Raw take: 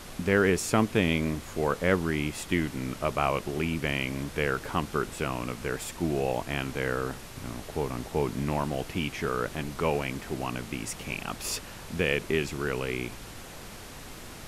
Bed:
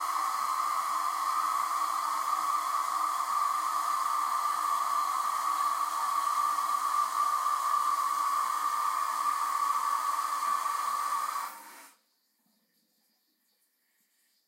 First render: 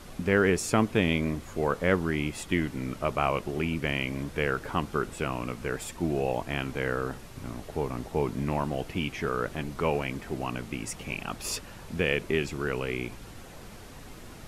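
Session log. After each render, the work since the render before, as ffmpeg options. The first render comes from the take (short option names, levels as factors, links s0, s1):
-af "afftdn=nr=6:nf=-44"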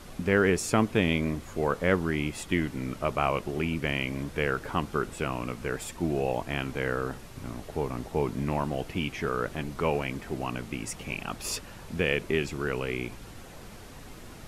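-af anull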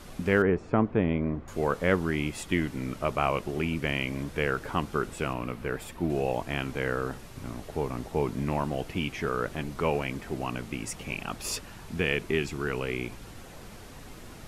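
-filter_complex "[0:a]asettb=1/sr,asplit=3[s0][s1][s2];[s0]atrim=end=0.424[s3];[s1]atrim=start=0.42:end=1.48,asetpts=PTS-STARTPTS,afade=t=in:d=0.004:c=qsin,afade=t=out:st=1.056:d=0.004:c=qsin,lowpass=1300[s4];[s2]atrim=start=1.476[s5];[s3][s4]acrossfade=d=0.004:c1=hsin:c2=qsin[s6];[s6][s5]acrossfade=d=0.004:c1=qsin:c2=hsin,asettb=1/sr,asplit=3[s7][s8][s9];[s7]atrim=end=5.334[s10];[s8]atrim=start=5.33:end=6.1,asetpts=PTS-STARTPTS,afade=t=in:d=0.004:c=qsin,afade=t=out:st=0.766:d=0.004:c=qsin,equalizer=f=6800:t=o:w=1.4:g=-8[s11];[s9]atrim=start=6.096[s12];[s10][s11]acrossfade=d=0.004:c1=hsin:c2=qsin[s13];[s13][s12]acrossfade=d=0.004:c1=qsin:c2=hsin,asettb=1/sr,asplit=3[s14][s15][s16];[s14]atrim=end=11.684[s17];[s15]atrim=start=11.68:end=12.77,asetpts=PTS-STARTPTS,afade=t=in:d=0.004:c=qsin,afade=t=out:st=1.086:d=0.004:c=qsin,bandreject=f=540:w=5[s18];[s16]atrim=start=12.766[s19];[s17][s18]acrossfade=d=0.004:c1=hsin:c2=qsin[s20];[s20][s19]acrossfade=d=0.004:c1=qsin:c2=hsin"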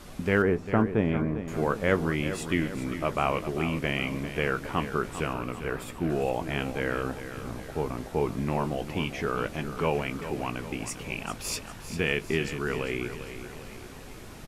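-filter_complex "[0:a]asplit=2[s0][s1];[s1]adelay=19,volume=0.237[s2];[s0][s2]amix=inputs=2:normalize=0,asplit=2[s3][s4];[s4]aecho=0:1:399|798|1197|1596|1995:0.282|0.141|0.0705|0.0352|0.0176[s5];[s3][s5]amix=inputs=2:normalize=0"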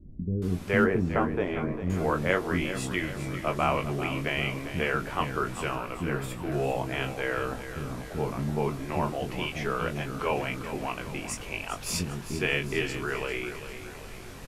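-filter_complex "[0:a]asplit=2[s0][s1];[s1]adelay=22,volume=0.501[s2];[s0][s2]amix=inputs=2:normalize=0,acrossover=split=300[s3][s4];[s4]adelay=420[s5];[s3][s5]amix=inputs=2:normalize=0"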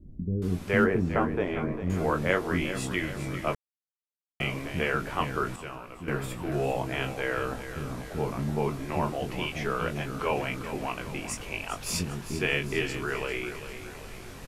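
-filter_complex "[0:a]asplit=5[s0][s1][s2][s3][s4];[s0]atrim=end=3.55,asetpts=PTS-STARTPTS,afade=t=out:st=3.546:d=0.004:c=hsin[s5];[s1]atrim=start=3.55:end=4.4,asetpts=PTS-STARTPTS,volume=0[s6];[s2]atrim=start=4.4:end=5.562,asetpts=PTS-STARTPTS,afade=t=in:d=0.004:c=hsin[s7];[s3]atrim=start=5.558:end=6.082,asetpts=PTS-STARTPTS,volume=0.376[s8];[s4]atrim=start=6.078[s9];[s5][s6][s7]concat=n=3:v=0:a=1[s10];[s10][s8]acrossfade=d=0.004:c1=hsin:c2=hsin[s11];[s11][s9]acrossfade=d=0.004:c1=hsin:c2=hsin"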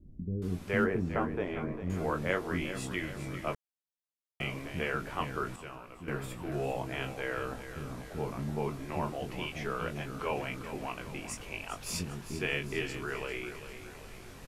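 -af "volume=0.531"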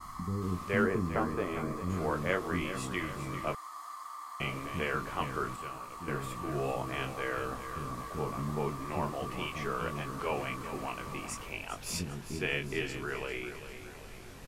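-filter_complex "[1:a]volume=0.188[s0];[0:a][s0]amix=inputs=2:normalize=0"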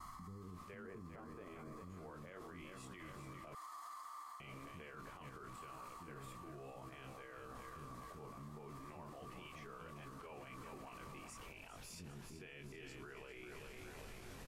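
-af "areverse,acompressor=threshold=0.00891:ratio=12,areverse,alimiter=level_in=10:limit=0.0631:level=0:latency=1:release=59,volume=0.1"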